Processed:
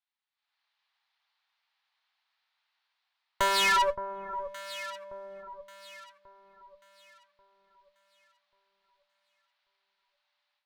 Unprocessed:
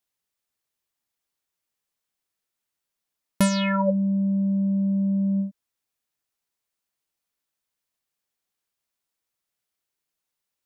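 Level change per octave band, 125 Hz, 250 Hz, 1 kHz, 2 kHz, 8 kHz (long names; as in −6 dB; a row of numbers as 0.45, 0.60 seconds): below −30 dB, −30.5 dB, +4.5 dB, +4.5 dB, −1.5 dB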